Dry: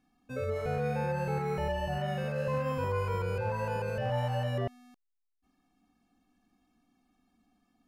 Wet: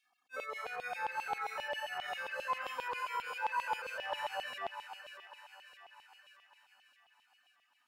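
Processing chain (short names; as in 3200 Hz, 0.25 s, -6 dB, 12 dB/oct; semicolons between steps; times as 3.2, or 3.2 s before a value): reverb removal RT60 0.98 s; thinning echo 0.596 s, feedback 62%, high-pass 820 Hz, level -9 dB; LFO high-pass saw down 7.5 Hz 790–3100 Hz; attack slew limiter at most 550 dB/s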